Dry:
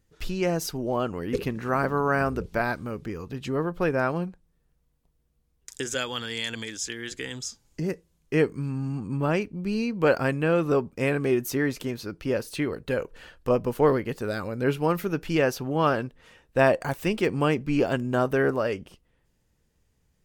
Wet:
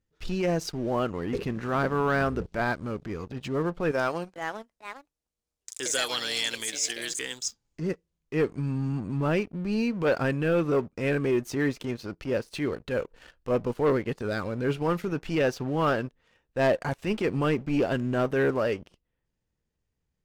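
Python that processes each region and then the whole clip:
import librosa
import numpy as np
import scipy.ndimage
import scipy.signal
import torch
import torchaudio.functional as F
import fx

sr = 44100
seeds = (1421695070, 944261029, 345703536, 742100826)

y = fx.chain(x, sr, fx.bass_treble(bass_db=-12, treble_db=12),
    fx.echo_pitch(ms=447, semitones=4, count=2, db_per_echo=-6.0), at=(3.91, 7.48))
y = scipy.signal.sosfilt(scipy.signal.bessel(2, 6500.0, 'lowpass', norm='mag', fs=sr, output='sos'), y)
y = fx.transient(y, sr, attack_db=-8, sustain_db=-3)
y = fx.leveller(y, sr, passes=2)
y = y * librosa.db_to_amplitude(-6.0)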